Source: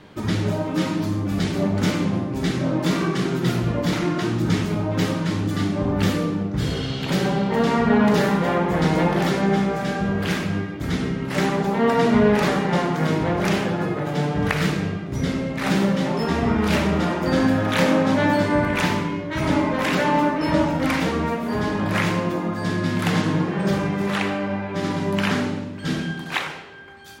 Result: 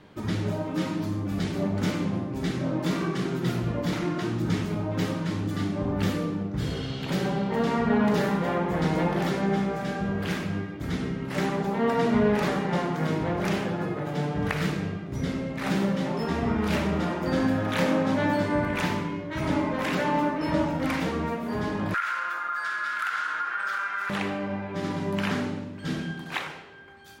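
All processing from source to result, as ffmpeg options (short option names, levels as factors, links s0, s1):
-filter_complex "[0:a]asettb=1/sr,asplit=3[s0][s1][s2];[s0]atrim=end=21.944[s3];[s1]atrim=start=21.94:end=24.1,asetpts=PTS-STARTPTS,afade=t=in:d=0.004:c=qsin,afade=t=out:st=2.156:d=0.004:c=qsin,highpass=f=1400:t=q:w=15,acompressor=threshold=0.112:ratio=4:attack=3.2:release=140:knee=1:detection=peak[s4];[s2]atrim=start=24.096[s5];[s3][s4]acrossfade=d=0.004:c1=hsin:c2=qsin[s6];[s6][s5]acrossfade=d=0.004:c1=qsin:c2=hsin,lowpass=f=2300:p=1,aemphasis=mode=production:type=50kf,volume=0.531"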